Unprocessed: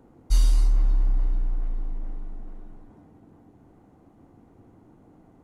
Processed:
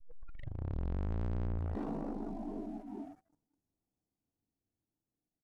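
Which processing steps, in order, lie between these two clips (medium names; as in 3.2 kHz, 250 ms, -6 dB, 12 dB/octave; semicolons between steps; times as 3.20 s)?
tape start-up on the opening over 1.38 s; Doppler pass-by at 1.18 s, 9 m/s, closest 2.9 m; bass shelf 270 Hz +2 dB; feedback delay 187 ms, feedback 53%, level -18.5 dB; on a send at -8 dB: reverberation RT60 0.30 s, pre-delay 56 ms; on the sum: saturation -39 dBFS, distortion -3 dB; spectral noise reduction 27 dB; in parallel at +1 dB: compression, threshold -58 dBFS, peak gain reduction 13.5 dB; on the sum: waveshaping leveller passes 3; treble shelf 2.2 kHz -9.5 dB; attacks held to a fixed rise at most 100 dB/s; trim +7.5 dB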